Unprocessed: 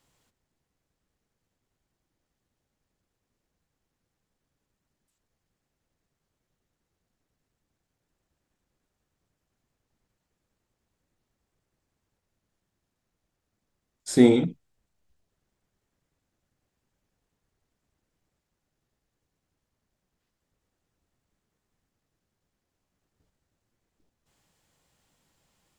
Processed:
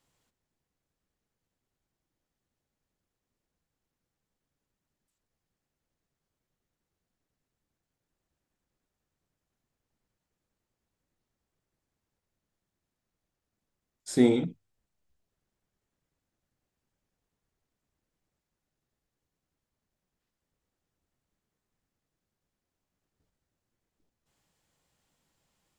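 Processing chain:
mains-hum notches 50/100 Hz
level −5 dB

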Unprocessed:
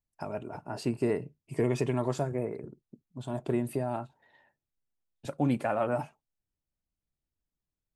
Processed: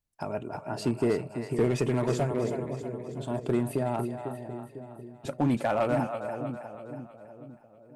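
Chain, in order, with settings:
echo with a time of its own for lows and highs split 560 Hz, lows 499 ms, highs 321 ms, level −8 dB
asymmetric clip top −23.5 dBFS
level +3 dB

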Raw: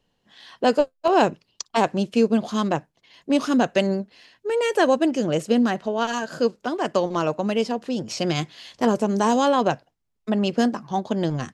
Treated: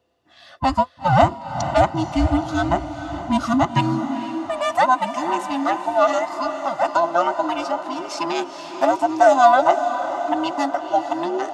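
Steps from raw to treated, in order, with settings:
frequency inversion band by band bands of 500 Hz
hollow resonant body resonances 680/1,200 Hz, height 14 dB, ringing for 35 ms
on a send: feedback delay with all-pass diffusion 471 ms, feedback 56%, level −10 dB
on the sum: high-pass filter sweep 81 Hz → 450 Hz, 0:03.44–0:04.62
level −1.5 dB

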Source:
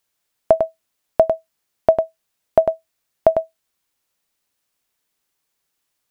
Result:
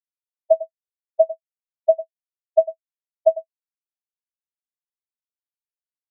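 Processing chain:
Butterworth low-pass 740 Hz
comb filter 6.5 ms, depth 39%
every bin expanded away from the loudest bin 2.5 to 1
level −3 dB

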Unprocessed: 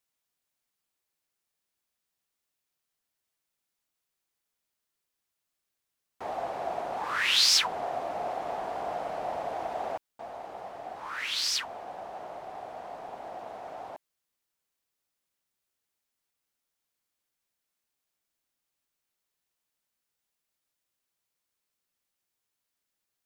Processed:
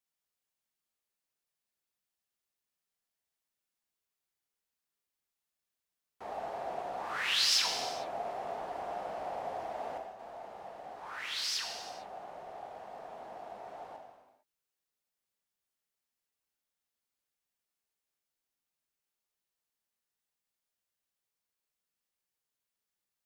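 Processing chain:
reverb whose tail is shaped and stops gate 480 ms falling, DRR 1.5 dB
level −7.5 dB

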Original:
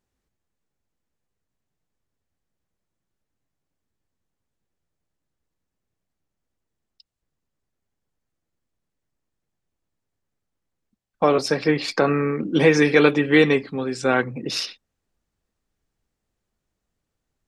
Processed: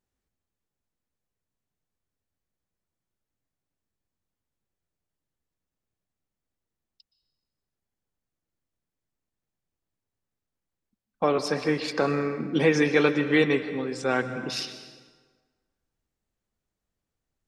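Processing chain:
dense smooth reverb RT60 1.5 s, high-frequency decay 0.7×, pre-delay 110 ms, DRR 10.5 dB
level −5.5 dB

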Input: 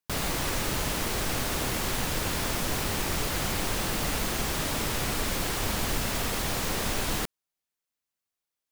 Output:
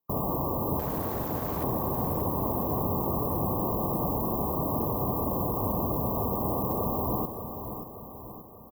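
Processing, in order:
in parallel at −11.5 dB: wrap-around overflow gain 31.5 dB
on the sum: linear-phase brick-wall band-stop 1,200–13,000 Hz
0:00.79–0:01.64: gain into a clipping stage and back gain 30.5 dB
high-pass filter 76 Hz 12 dB per octave
on a send: repeating echo 581 ms, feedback 51%, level −9 dB
on the sum: level +3.5 dB

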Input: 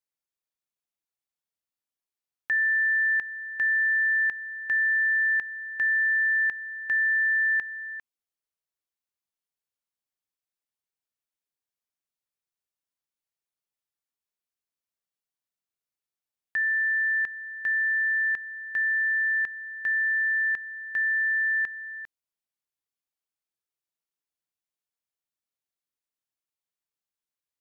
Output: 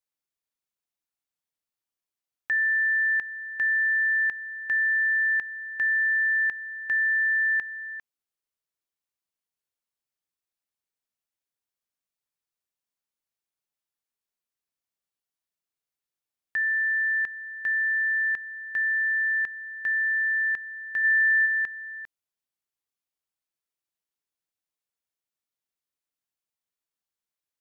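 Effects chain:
0:21.03–0:21.45: high-shelf EQ 2,000 Hz → 2,000 Hz +10 dB

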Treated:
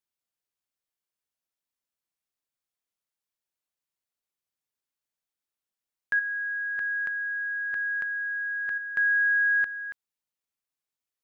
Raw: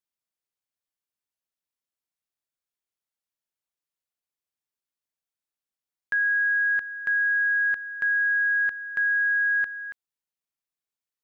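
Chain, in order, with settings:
0:06.19–0:08.78: compressor whose output falls as the input rises −30 dBFS, ratio −1

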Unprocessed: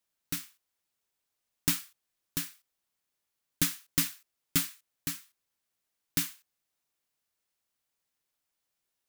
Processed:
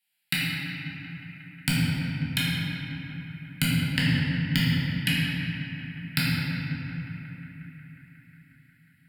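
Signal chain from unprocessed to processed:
notch filter 3,600 Hz, Q 16
treble cut that deepens with the level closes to 560 Hz, closed at −28.5 dBFS
high-pass filter 110 Hz 24 dB per octave
treble cut that deepens with the level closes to 340 Hz, closed at −32 dBFS
drawn EQ curve 190 Hz 0 dB, 470 Hz −20 dB, 790 Hz +9 dB, 2,000 Hz +12 dB
leveller curve on the samples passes 2
phaser with its sweep stopped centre 2,700 Hz, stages 4
feedback echo with a band-pass in the loop 180 ms, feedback 84%, band-pass 1,800 Hz, level −13.5 dB
convolution reverb RT60 3.2 s, pre-delay 5 ms, DRR −8 dB

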